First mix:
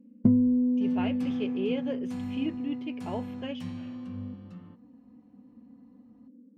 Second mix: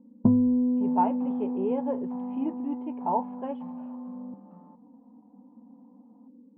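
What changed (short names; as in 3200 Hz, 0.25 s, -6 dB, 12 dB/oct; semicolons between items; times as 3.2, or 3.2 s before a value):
second sound: add rippled Chebyshev high-pass 150 Hz, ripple 9 dB; master: add synth low-pass 910 Hz, resonance Q 7.7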